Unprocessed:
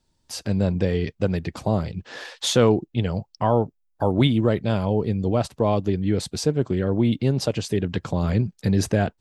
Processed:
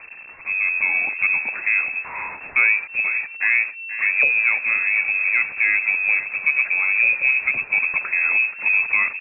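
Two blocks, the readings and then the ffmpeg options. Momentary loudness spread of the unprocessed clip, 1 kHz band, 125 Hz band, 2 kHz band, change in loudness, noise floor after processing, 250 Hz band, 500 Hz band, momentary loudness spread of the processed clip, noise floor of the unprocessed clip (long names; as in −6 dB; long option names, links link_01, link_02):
8 LU, −5.5 dB, below −30 dB, +22.0 dB, +5.5 dB, −39 dBFS, below −25 dB, −21.5 dB, 6 LU, −70 dBFS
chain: -filter_complex "[0:a]aeval=exprs='val(0)+0.5*0.0398*sgn(val(0))':channel_layout=same,asplit=2[link_01][link_02];[link_02]adelay=482,lowpass=frequency=1600:poles=1,volume=-11.5dB,asplit=2[link_03][link_04];[link_04]adelay=482,lowpass=frequency=1600:poles=1,volume=0.29,asplit=2[link_05][link_06];[link_06]adelay=482,lowpass=frequency=1600:poles=1,volume=0.29[link_07];[link_03][link_05][link_07]amix=inputs=3:normalize=0[link_08];[link_01][link_08]amix=inputs=2:normalize=0,dynaudnorm=framelen=100:gausssize=13:maxgain=7dB,lowpass=frequency=2300:width_type=q:width=0.5098,lowpass=frequency=2300:width_type=q:width=0.6013,lowpass=frequency=2300:width_type=q:width=0.9,lowpass=frequency=2300:width_type=q:width=2.563,afreqshift=-2700,volume=-4.5dB"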